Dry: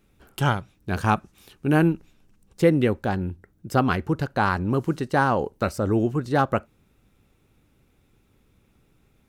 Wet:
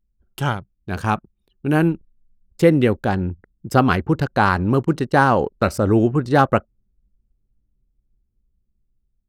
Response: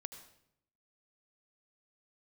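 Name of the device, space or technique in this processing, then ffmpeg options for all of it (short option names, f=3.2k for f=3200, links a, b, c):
voice memo with heavy noise removal: -af "anlmdn=0.251,dynaudnorm=f=890:g=5:m=11.5dB"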